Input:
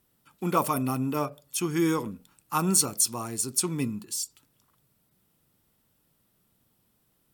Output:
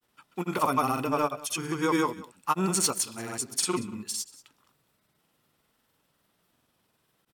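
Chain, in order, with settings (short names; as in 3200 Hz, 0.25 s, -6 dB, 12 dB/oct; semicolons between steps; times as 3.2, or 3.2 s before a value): overdrive pedal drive 12 dB, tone 3600 Hz, clips at -7.5 dBFS; grains, pitch spread up and down by 0 st; echo 0.185 s -19.5 dB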